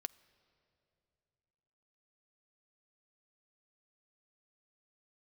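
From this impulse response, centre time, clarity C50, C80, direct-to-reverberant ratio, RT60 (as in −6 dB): 3 ms, 21.0 dB, 21.5 dB, 15.0 dB, 2.8 s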